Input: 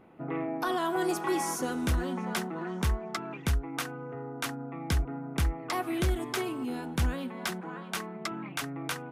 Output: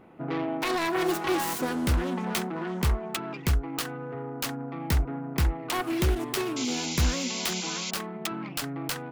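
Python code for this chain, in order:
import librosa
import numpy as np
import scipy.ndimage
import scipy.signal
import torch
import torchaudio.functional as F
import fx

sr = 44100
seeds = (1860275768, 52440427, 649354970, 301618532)

y = fx.self_delay(x, sr, depth_ms=0.3)
y = fx.spec_paint(y, sr, seeds[0], shape='noise', start_s=6.56, length_s=1.35, low_hz=2000.0, high_hz=7500.0, level_db=-38.0)
y = y * 10.0 ** (3.5 / 20.0)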